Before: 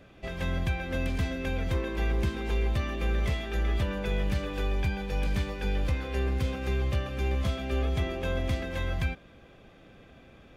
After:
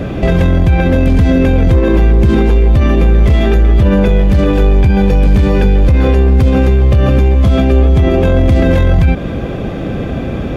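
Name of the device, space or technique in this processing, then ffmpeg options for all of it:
mastering chain: -af "highpass=f=43:p=1,equalizer=f=950:t=o:w=2.7:g=-3,acompressor=threshold=-33dB:ratio=2,asoftclip=type=tanh:threshold=-26dB,tiltshelf=f=1.2k:g=7,alimiter=level_in=33dB:limit=-1dB:release=50:level=0:latency=1,volume=-2dB"

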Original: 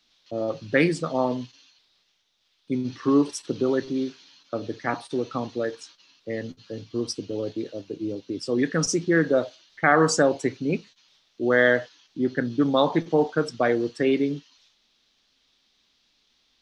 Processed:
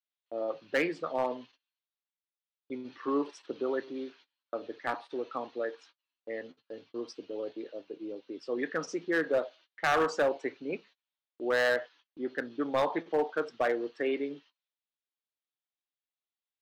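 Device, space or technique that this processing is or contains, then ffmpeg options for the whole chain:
walkie-talkie: -af "highpass=440,lowpass=2.6k,asoftclip=type=hard:threshold=-17dB,agate=range=-25dB:threshold=-52dB:ratio=16:detection=peak,volume=-4dB"

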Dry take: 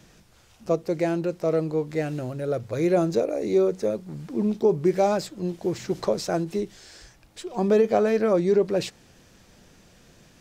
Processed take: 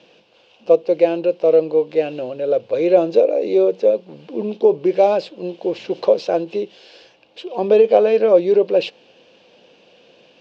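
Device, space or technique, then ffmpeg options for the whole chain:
phone earpiece: -af "highpass=340,equalizer=f=510:t=q:w=4:g=9,equalizer=f=1.3k:t=q:w=4:g=-9,equalizer=f=1.9k:t=q:w=4:g=-10,equalizer=f=2.8k:t=q:w=4:g=9,lowpass=f=4.2k:w=0.5412,lowpass=f=4.2k:w=1.3066,volume=5.5dB"

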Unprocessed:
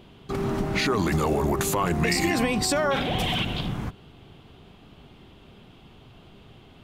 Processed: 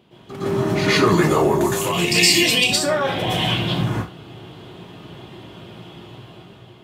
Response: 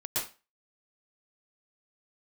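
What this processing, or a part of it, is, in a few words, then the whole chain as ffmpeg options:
far laptop microphone: -filter_complex "[0:a]asettb=1/sr,asplit=3[a][b][c];[a]atrim=end=1.814[d];[b]atrim=start=1.81:end=2.64,asetpts=PTS-STARTPTS,afade=t=in:d=0.004:c=qsin,afade=t=out:st=0.826:d=0.004:c=qsin,highshelf=f=2.1k:t=q:w=3:g=11.5[e];[c]atrim=start=2.636[f];[d][e]acrossfade=d=0.004:c1=hsin:c2=qsin[g];[g][f]acrossfade=d=0.004:c1=qsin:c2=hsin[h];[1:a]atrim=start_sample=2205[i];[h][i]afir=irnorm=-1:irlink=0,highpass=110,dynaudnorm=f=170:g=9:m=7dB,volume=-1dB"

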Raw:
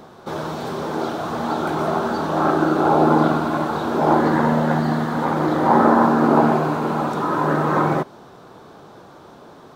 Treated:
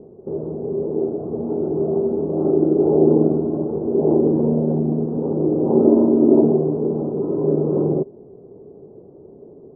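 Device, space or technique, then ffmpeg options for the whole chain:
under water: -filter_complex "[0:a]asettb=1/sr,asplit=3[a][b][c];[a]atrim=end=5.864[d];[b]atrim=start=5.86:end=6.44,asetpts=PTS-STARTPTS,afade=t=in:d=0.004:c=qsin,afade=t=out:st=0.576:d=0.004:c=qsin,aecho=1:1:3.2:0.5,atrim=end_sample=25578[e];[c]atrim=start=6.436[f];[d][e]acrossfade=d=0.004:c1=hsin:c2=qsin[g];[g][f]acrossfade=d=0.004:c1=qsin:c2=hsin,lowpass=f=510:w=0.5412,lowpass=f=510:w=1.3066,equalizer=f=410:t=o:w=0.3:g=10.5"

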